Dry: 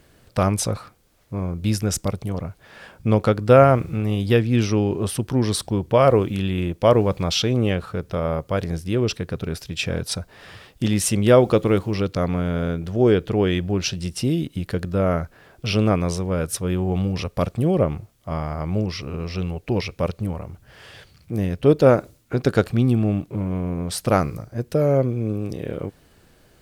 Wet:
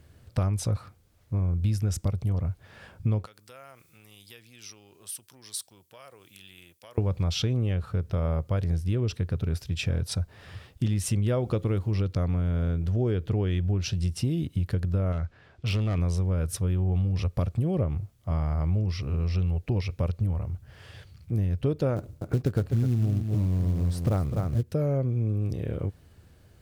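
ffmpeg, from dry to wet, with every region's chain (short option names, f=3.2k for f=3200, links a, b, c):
-filter_complex "[0:a]asettb=1/sr,asplit=3[a][b][c];[a]atrim=end=3.264[d];[b]atrim=start=3.26:end=6.98,asetpts=PTS-STARTPTS,afade=t=in:d=0.004:c=qsin,afade=t=out:st=3.716:d=0.004:c=qsin,highpass=85,acompressor=threshold=-18dB:ratio=4:attack=3.2:release=140:knee=1:detection=peak,aderivative[e];[c]atrim=start=6.976[f];[d][e]acrossfade=d=0.004:c1=hsin:c2=qsin[g];[g][f]acrossfade=d=0.004:c1=qsin:c2=hsin,asettb=1/sr,asplit=3[h][i][j];[h]atrim=end=15.124[k];[i]atrim=start=15.12:end=15.98,asetpts=PTS-STARTPTS,afade=t=in:d=0.004:c=qsin,afade=t=out:st=0.856:d=0.004:c=qsin,lowpass=4.3k,tiltshelf=f=1.4k:g=-3.5,asoftclip=type=hard:threshold=-19.5dB[l];[j]atrim=start=15.976[m];[k][l]acrossfade=d=0.004:c1=hsin:c2=qsin[n];[n][m]acrossfade=d=0.004:c1=qsin:c2=hsin,asettb=1/sr,asplit=3[o][p][q];[o]atrim=end=21.964[r];[p]atrim=start=21.96:end=24.63,asetpts=PTS-STARTPTS,afade=t=in:d=0.004:c=qsin,afade=t=out:st=2.666:d=0.004:c=qsin,tiltshelf=f=1.4k:g=5,aecho=1:1:252:0.335,atrim=end_sample=117747,acrusher=bits=5:mode=log:mix=0:aa=0.000001[s];[q]atrim=start=24.626[t];[r][s]acrossfade=d=0.004:c1=hsin:c2=qsin[u];[u][t]acrossfade=d=0.004:c1=qsin:c2=hsin,equalizer=f=86:w=0.94:g=14,acompressor=threshold=-15dB:ratio=6,volume=-7dB"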